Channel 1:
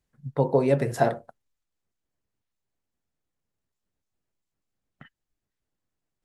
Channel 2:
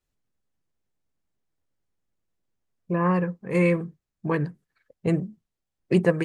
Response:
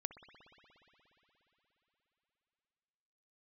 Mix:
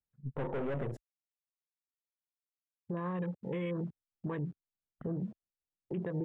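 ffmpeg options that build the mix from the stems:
-filter_complex "[0:a]aeval=exprs='(tanh(25.1*val(0)+0.6)-tanh(0.6))/25.1':c=same,volume=1.12,asplit=3[s0][s1][s2];[s0]atrim=end=0.97,asetpts=PTS-STARTPTS,afade=t=out:st=0.966:d=0.004:c=hsin[s3];[s1]atrim=start=0.97:end=3.89,asetpts=PTS-STARTPTS,volume=0[s4];[s2]atrim=start=3.89,asetpts=PTS-STARTPTS,afade=t=in:d=0.004:c=hsin[s5];[s3][s4][s5]concat=n=3:v=0:a=1[s6];[1:a]afwtdn=0.0178,alimiter=limit=0.178:level=0:latency=1:release=104,aeval=exprs='val(0)*gte(abs(val(0)),0.00562)':c=same,volume=0.75[s7];[s6][s7]amix=inputs=2:normalize=0,lowpass=f=3500:p=1,afwtdn=0.00501,alimiter=level_in=1.78:limit=0.0631:level=0:latency=1:release=54,volume=0.562"

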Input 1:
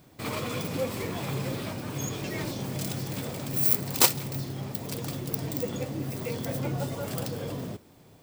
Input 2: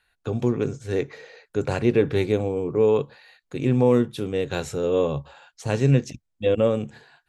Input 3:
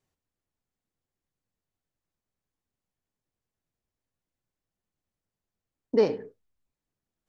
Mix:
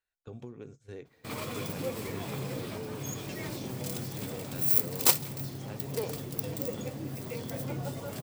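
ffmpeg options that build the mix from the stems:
-filter_complex "[0:a]adynamicequalizer=threshold=0.00631:dfrequency=7300:dqfactor=0.7:tfrequency=7300:tqfactor=0.7:attack=5:release=100:ratio=0.375:range=2:mode=boostabove:tftype=highshelf,adelay=1050,volume=0.562[s0];[1:a]acompressor=threshold=0.0562:ratio=6,volume=0.178[s1];[2:a]acompressor=threshold=0.1:ratio=6,highpass=490,volume=0.531[s2];[s0][s1][s2]amix=inputs=3:normalize=0,agate=range=0.355:threshold=0.00355:ratio=16:detection=peak"

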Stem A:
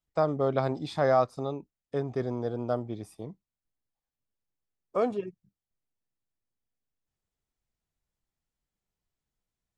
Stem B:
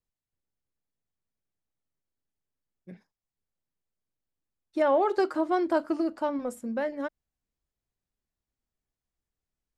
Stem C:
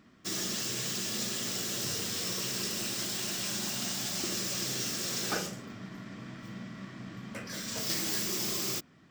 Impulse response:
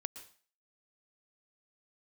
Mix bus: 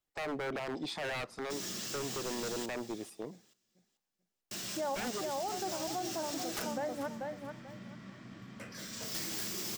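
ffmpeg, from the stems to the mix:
-filter_complex "[0:a]alimiter=limit=0.0794:level=0:latency=1:release=50,highpass=280,aeval=exprs='0.0237*(abs(mod(val(0)/0.0237+3,4)-2)-1)':c=same,volume=1.06,asplit=3[s0][s1][s2];[s1]volume=0.141[s3];[1:a]equalizer=f=760:w=4:g=12,volume=0.473,asplit=2[s4][s5];[s5]volume=0.447[s6];[2:a]aeval=exprs='(mod(14.1*val(0)+1,2)-1)/14.1':c=same,adelay=1250,volume=0.501,asplit=3[s7][s8][s9];[s7]atrim=end=2.66,asetpts=PTS-STARTPTS,afade=t=out:st=2.656:d=0.004:c=hsin[s10];[s8]atrim=start=2.66:end=4.51,asetpts=PTS-STARTPTS,volume=0[s11];[s9]atrim=start=4.51,asetpts=PTS-STARTPTS,afade=t=in:d=0.004:c=hsin[s12];[s10][s11][s12]concat=n=3:v=0:a=1,asplit=2[s13][s14];[s14]volume=0.188[s15];[s2]apad=whole_len=431216[s16];[s4][s16]sidechaincompress=threshold=0.00178:ratio=8:attack=16:release=1220[s17];[3:a]atrim=start_sample=2205[s18];[s3][s18]afir=irnorm=-1:irlink=0[s19];[s6][s15]amix=inputs=2:normalize=0,aecho=0:1:438|876|1314|1752:1|0.23|0.0529|0.0122[s20];[s0][s17][s13][s19][s20]amix=inputs=5:normalize=0,alimiter=level_in=1.58:limit=0.0631:level=0:latency=1:release=66,volume=0.631"

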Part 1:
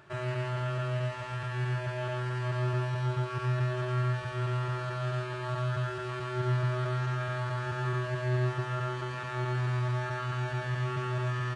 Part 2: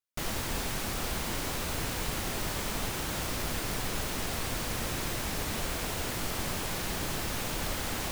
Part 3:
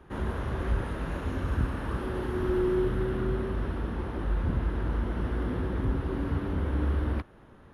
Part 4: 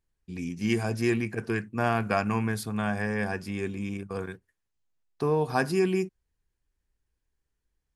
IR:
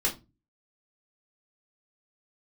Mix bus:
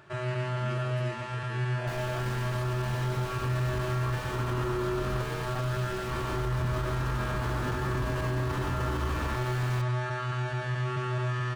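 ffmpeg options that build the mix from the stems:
-filter_complex "[0:a]volume=1.19[s0];[1:a]asoftclip=type=tanh:threshold=0.0355,highshelf=f=7200:g=-10,adelay=1700,volume=0.596[s1];[2:a]equalizer=f=1100:t=o:w=0.77:g=11,adelay=2150,volume=0.668[s2];[3:a]volume=0.133,asplit=2[s3][s4];[s4]apad=whole_len=435964[s5];[s2][s5]sidechaincompress=threshold=0.00141:ratio=8:attack=16:release=112[s6];[s0][s1][s6][s3]amix=inputs=4:normalize=0,alimiter=limit=0.0794:level=0:latency=1:release=21"

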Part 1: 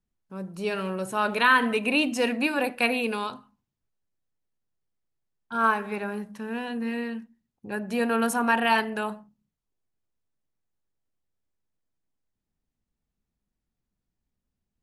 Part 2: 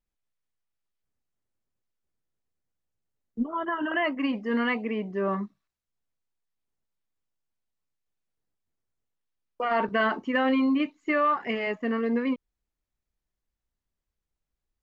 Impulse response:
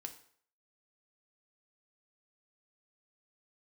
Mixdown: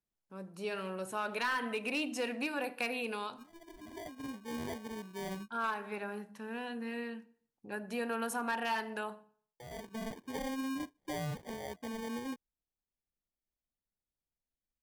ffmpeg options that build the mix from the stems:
-filter_complex "[0:a]aeval=exprs='clip(val(0),-1,0.141)':c=same,lowshelf=f=130:g=-12,volume=0.335,afade=t=out:st=8.97:d=0.54:silence=0.298538,asplit=3[s0][s1][s2];[s1]volume=0.631[s3];[1:a]acrusher=samples=33:mix=1:aa=0.000001,adynamicequalizer=threshold=0.0112:dfrequency=2200:dqfactor=0.7:tfrequency=2200:tqfactor=0.7:attack=5:release=100:ratio=0.375:range=1.5:mode=cutabove:tftype=highshelf,volume=0.224[s4];[s2]apad=whole_len=653907[s5];[s4][s5]sidechaincompress=threshold=0.00355:ratio=8:attack=16:release=1130[s6];[2:a]atrim=start_sample=2205[s7];[s3][s7]afir=irnorm=-1:irlink=0[s8];[s0][s6][s8]amix=inputs=3:normalize=0,acompressor=threshold=0.02:ratio=2"

